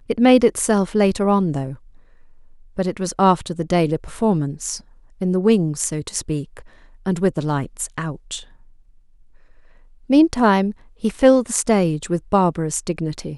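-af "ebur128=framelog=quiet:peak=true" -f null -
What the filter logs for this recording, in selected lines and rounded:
Integrated loudness:
  I:         -19.4 LUFS
  Threshold: -30.5 LUFS
Loudness range:
  LRA:         8.1 LU
  Threshold: -41.3 LUFS
  LRA low:   -26.4 LUFS
  LRA high:  -18.2 LUFS
True peak:
  Peak:       -1.4 dBFS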